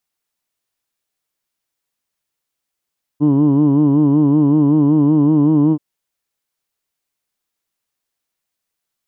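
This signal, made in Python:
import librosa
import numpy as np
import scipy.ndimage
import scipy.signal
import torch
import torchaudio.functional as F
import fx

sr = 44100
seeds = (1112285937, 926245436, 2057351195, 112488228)

y = fx.formant_vowel(sr, seeds[0], length_s=2.58, hz=143.0, glide_st=1.0, vibrato_hz=5.3, vibrato_st=0.9, f1_hz=300.0, f2_hz=1000.0, f3_hz=3000.0)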